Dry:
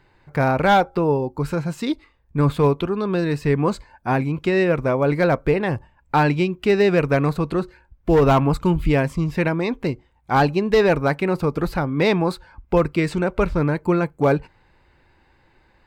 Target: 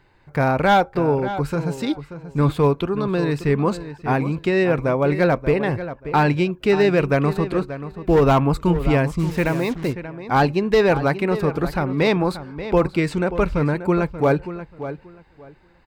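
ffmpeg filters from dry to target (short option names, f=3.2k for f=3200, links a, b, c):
-filter_complex "[0:a]asplit=2[a][b];[b]adelay=583,lowpass=f=3.6k:p=1,volume=-12dB,asplit=2[c][d];[d]adelay=583,lowpass=f=3.6k:p=1,volume=0.2,asplit=2[e][f];[f]adelay=583,lowpass=f=3.6k:p=1,volume=0.2[g];[a][c][e][g]amix=inputs=4:normalize=0,asplit=3[h][i][j];[h]afade=t=out:st=9.18:d=0.02[k];[i]acrusher=bits=5:mix=0:aa=0.5,afade=t=in:st=9.18:d=0.02,afade=t=out:st=9.92:d=0.02[l];[j]afade=t=in:st=9.92:d=0.02[m];[k][l][m]amix=inputs=3:normalize=0"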